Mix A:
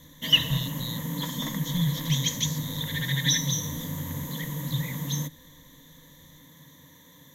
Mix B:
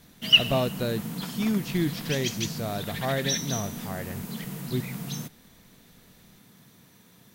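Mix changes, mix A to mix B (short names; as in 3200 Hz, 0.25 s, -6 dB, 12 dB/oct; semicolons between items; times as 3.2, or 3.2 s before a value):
speech: remove brick-wall FIR band-stop 210–3000 Hz; master: remove ripple EQ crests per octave 1.1, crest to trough 16 dB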